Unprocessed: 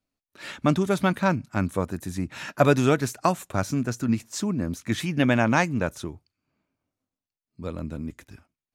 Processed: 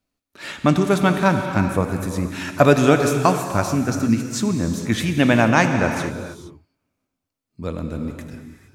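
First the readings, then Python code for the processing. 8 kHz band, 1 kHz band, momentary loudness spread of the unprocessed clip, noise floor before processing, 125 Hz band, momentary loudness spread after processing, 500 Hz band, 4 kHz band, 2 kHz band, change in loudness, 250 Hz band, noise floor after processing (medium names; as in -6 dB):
+6.0 dB, +6.0 dB, 15 LU, under -85 dBFS, +5.5 dB, 16 LU, +6.0 dB, +6.0 dB, +6.0 dB, +5.5 dB, +6.0 dB, -82 dBFS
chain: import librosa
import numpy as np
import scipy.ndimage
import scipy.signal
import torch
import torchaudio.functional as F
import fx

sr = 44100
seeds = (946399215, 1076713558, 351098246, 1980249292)

y = fx.rev_gated(x, sr, seeds[0], gate_ms=490, shape='flat', drr_db=5.5)
y = F.gain(torch.from_numpy(y), 5.0).numpy()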